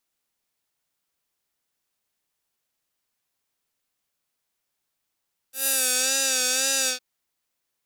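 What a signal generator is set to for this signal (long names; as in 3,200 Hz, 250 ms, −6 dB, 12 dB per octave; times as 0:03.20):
subtractive patch with vibrato C5, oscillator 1 square, oscillator 2 level −17.5 dB, sub −2 dB, noise −10 dB, filter bandpass, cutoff 4,600 Hz, Q 1.5, filter envelope 1.5 octaves, filter decay 0.54 s, attack 135 ms, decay 0.43 s, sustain −3 dB, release 0.11 s, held 1.35 s, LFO 1.9 Hz, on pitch 60 cents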